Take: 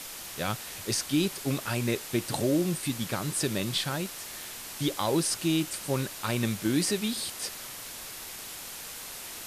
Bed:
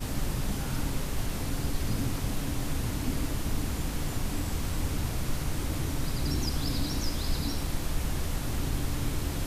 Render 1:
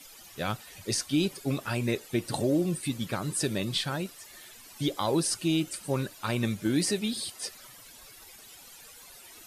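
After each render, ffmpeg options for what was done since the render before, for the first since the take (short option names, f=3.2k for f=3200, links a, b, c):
-af "afftdn=nr=14:nf=-41"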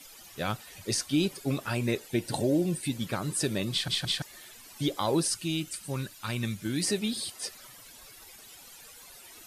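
-filter_complex "[0:a]asettb=1/sr,asplit=3[a][b][c];[a]atrim=end=2.084[d];[b]atrim=start=2.08:end=2.97,asetpts=PTS-STARTPTS,afade=t=in:d=0.004:c=qsin,afade=t=out:st=0.886:d=0.004:c=qsin,asuperstop=centerf=1200:order=4:qfactor=4.6[e];[c]atrim=start=2.966[f];[d][e]acrossfade=d=0.004:c1=hsin:c2=qsin[g];[g][f]acrossfade=d=0.004:c1=qsin:c2=hsin,asettb=1/sr,asplit=3[h][i][j];[h]atrim=end=5.284[k];[i]atrim=start=5.28:end=6.83,asetpts=PTS-STARTPTS,afade=t=in:d=0.004:c=qsin,afade=t=out:st=1.546:d=0.004:c=qsin,equalizer=f=530:w=0.55:g=-8.5[l];[j]atrim=start=6.826[m];[k][l]acrossfade=d=0.004:c1=hsin:c2=qsin[n];[n][m]acrossfade=d=0.004:c1=qsin:c2=hsin,asplit=4[o][p][q][r];[o]atrim=end=3.882[s];[p]atrim=start=3.708:end=3.882[t];[q]atrim=start=3.708:end=3.882[u];[r]atrim=start=4.218[v];[s][t]acrossfade=d=0.004:c1=hsin:c2=hsin[w];[w][u]acrossfade=d=0.004:c1=hsin:c2=hsin[x];[x][v]acrossfade=d=0.004:c1=hsin:c2=hsin"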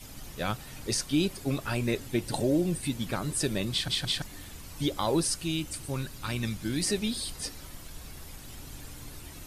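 -filter_complex "[1:a]volume=-15dB[a];[0:a][a]amix=inputs=2:normalize=0"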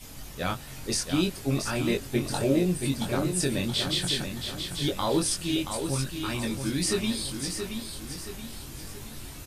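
-filter_complex "[0:a]asplit=2[a][b];[b]adelay=22,volume=-3.5dB[c];[a][c]amix=inputs=2:normalize=0,aecho=1:1:676|1352|2028|2704|3380:0.447|0.197|0.0865|0.0381|0.0167"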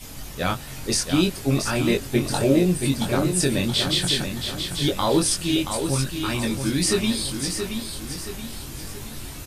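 -af "volume=5.5dB"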